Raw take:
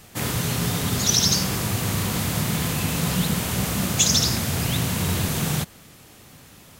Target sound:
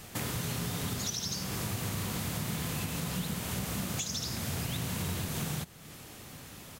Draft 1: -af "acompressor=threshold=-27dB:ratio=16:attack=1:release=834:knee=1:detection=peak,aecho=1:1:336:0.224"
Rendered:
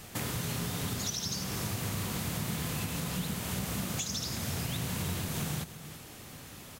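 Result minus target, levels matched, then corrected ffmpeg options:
echo-to-direct +11 dB
-af "acompressor=threshold=-27dB:ratio=16:attack=1:release=834:knee=1:detection=peak,aecho=1:1:336:0.0631"

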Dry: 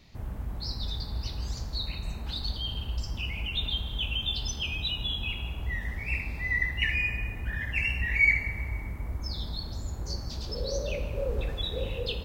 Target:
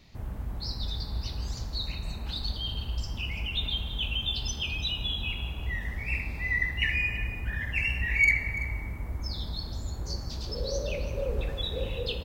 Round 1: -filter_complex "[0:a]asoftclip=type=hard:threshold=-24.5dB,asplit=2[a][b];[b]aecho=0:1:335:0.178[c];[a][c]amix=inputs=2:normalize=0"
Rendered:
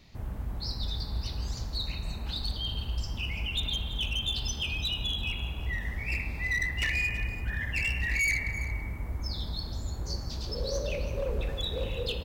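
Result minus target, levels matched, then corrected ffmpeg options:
hard clip: distortion +19 dB
-filter_complex "[0:a]asoftclip=type=hard:threshold=-15dB,asplit=2[a][b];[b]aecho=0:1:335:0.178[c];[a][c]amix=inputs=2:normalize=0"

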